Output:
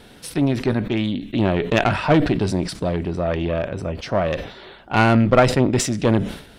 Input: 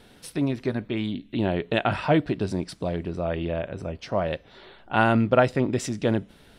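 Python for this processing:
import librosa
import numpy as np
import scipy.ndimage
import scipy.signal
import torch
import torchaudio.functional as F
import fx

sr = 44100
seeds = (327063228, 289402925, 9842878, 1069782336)

y = fx.diode_clip(x, sr, knee_db=-20.0)
y = fx.sustainer(y, sr, db_per_s=100.0)
y = y * librosa.db_to_amplitude(7.0)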